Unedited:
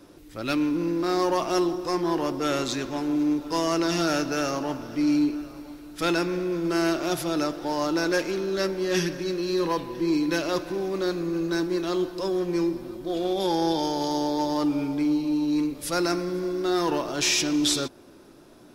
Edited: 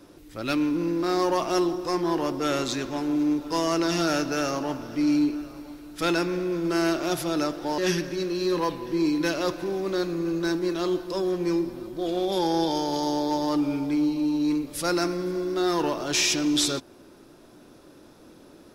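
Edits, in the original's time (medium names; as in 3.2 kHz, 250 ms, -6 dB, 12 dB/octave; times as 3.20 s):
7.78–8.86 s: delete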